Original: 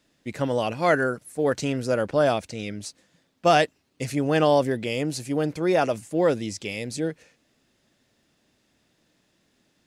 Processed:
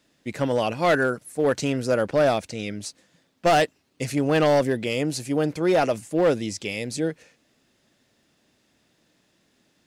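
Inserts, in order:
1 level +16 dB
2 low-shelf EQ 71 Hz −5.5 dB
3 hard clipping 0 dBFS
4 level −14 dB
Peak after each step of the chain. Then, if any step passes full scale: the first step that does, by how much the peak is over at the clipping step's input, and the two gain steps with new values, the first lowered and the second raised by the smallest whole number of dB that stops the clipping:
+9.0, +9.0, 0.0, −14.0 dBFS
step 1, 9.0 dB
step 1 +7 dB, step 4 −5 dB

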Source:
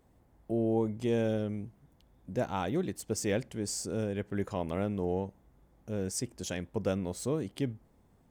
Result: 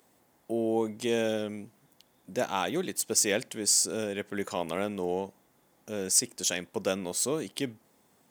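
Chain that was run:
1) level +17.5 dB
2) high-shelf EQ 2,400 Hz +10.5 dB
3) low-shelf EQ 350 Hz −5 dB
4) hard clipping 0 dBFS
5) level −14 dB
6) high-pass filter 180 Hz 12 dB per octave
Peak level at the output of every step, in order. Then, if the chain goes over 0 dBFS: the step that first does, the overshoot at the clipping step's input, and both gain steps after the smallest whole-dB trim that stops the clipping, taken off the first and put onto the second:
−1.0, +4.5, +4.5, 0.0, −14.0, −12.5 dBFS
step 2, 4.5 dB
step 1 +12.5 dB, step 5 −9 dB

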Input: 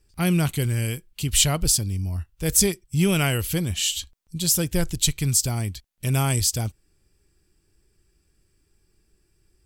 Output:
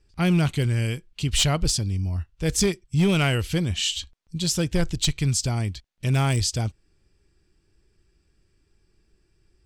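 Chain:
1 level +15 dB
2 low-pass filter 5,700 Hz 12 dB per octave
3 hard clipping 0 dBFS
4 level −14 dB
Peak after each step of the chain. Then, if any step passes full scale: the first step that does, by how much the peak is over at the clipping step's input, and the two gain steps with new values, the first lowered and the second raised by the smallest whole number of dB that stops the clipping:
+10.0, +7.5, 0.0, −14.0 dBFS
step 1, 7.5 dB
step 1 +7 dB, step 4 −6 dB

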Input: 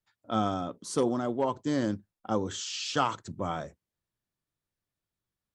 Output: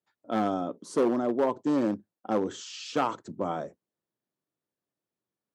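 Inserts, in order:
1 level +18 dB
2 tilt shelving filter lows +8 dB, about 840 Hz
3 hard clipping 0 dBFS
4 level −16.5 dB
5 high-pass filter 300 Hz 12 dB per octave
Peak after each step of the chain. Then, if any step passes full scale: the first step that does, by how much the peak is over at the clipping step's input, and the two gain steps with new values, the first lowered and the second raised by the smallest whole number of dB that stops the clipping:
+5.0, +6.5, 0.0, −16.5, −13.0 dBFS
step 1, 6.5 dB
step 1 +11 dB, step 4 −9.5 dB

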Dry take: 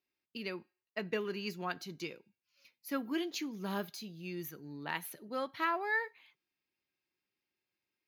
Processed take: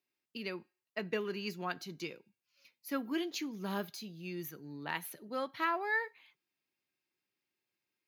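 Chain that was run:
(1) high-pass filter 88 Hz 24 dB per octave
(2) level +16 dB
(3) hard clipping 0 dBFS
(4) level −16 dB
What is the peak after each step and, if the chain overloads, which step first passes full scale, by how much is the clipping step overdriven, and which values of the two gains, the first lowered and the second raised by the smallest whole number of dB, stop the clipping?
−18.5, −2.5, −2.5, −18.5 dBFS
no step passes full scale

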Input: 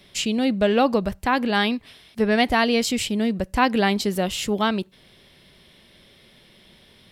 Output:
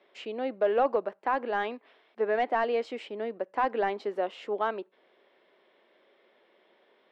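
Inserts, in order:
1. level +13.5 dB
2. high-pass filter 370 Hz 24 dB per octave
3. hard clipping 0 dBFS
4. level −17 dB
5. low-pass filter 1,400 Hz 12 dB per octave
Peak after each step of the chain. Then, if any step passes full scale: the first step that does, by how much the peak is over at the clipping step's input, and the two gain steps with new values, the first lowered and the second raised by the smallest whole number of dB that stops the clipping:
+8.0, +9.0, 0.0, −17.0, −16.5 dBFS
step 1, 9.0 dB
step 1 +4.5 dB, step 4 −8 dB

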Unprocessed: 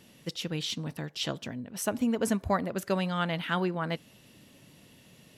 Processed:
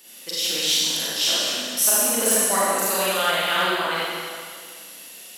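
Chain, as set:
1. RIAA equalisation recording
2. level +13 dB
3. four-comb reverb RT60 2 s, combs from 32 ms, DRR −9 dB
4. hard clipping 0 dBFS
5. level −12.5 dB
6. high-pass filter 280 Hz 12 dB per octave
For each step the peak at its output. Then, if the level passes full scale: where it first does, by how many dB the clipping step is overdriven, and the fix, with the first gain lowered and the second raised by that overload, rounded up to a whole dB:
−9.0, +4.0, +8.0, 0.0, −12.5, −7.5 dBFS
step 2, 8.0 dB
step 2 +5 dB, step 5 −4.5 dB

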